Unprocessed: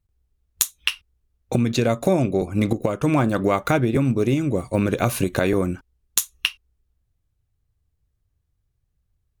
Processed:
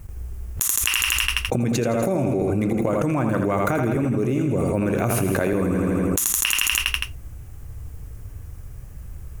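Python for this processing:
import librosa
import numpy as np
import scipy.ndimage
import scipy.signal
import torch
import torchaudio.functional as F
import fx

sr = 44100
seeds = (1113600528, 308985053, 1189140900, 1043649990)

y = fx.peak_eq(x, sr, hz=3900.0, db=-11.5, octaves=0.79)
y = fx.echo_feedback(y, sr, ms=82, feedback_pct=58, wet_db=-7.0)
y = fx.env_flatten(y, sr, amount_pct=100)
y = y * librosa.db_to_amplitude(-6.5)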